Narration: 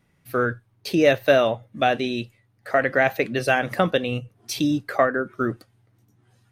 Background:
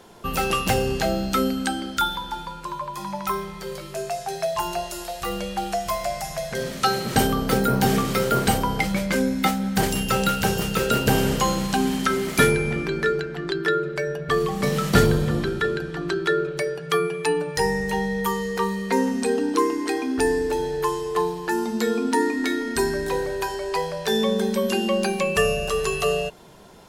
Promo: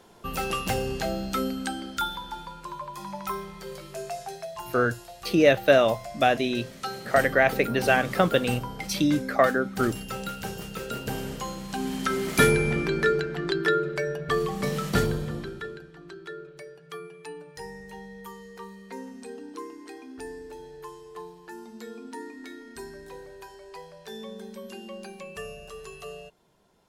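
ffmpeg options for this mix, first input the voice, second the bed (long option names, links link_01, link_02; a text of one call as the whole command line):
ffmpeg -i stem1.wav -i stem2.wav -filter_complex "[0:a]adelay=4400,volume=-1dB[link_01];[1:a]volume=6dB,afade=type=out:start_time=4.22:duration=0.24:silence=0.473151,afade=type=in:start_time=11.64:duration=0.94:silence=0.251189,afade=type=out:start_time=13.48:duration=2.44:silence=0.133352[link_02];[link_01][link_02]amix=inputs=2:normalize=0" out.wav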